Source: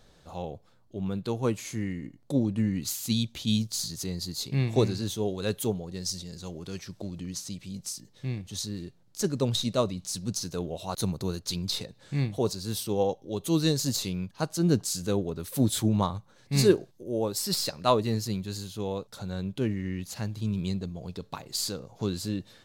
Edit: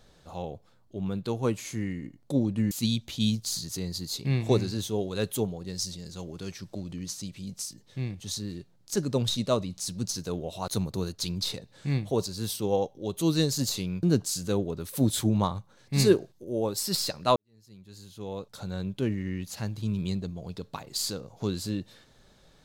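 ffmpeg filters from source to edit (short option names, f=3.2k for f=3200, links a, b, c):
-filter_complex "[0:a]asplit=4[a][b][c][d];[a]atrim=end=2.712[e];[b]atrim=start=2.978:end=14.302[f];[c]atrim=start=14.618:end=17.95,asetpts=PTS-STARTPTS,afade=t=out:st=3.328:d=0.004:c=hsin[g];[d]atrim=start=17.95,asetpts=PTS-STARTPTS,afade=t=in:d=1.22:c=qua[h];[e][f]acrossfade=d=0.004:c1=hsin:c2=hsin[i];[g][h]concat=n=2:v=0:a=1[j];[i][j]acrossfade=d=0.004:c1=hsin:c2=hsin"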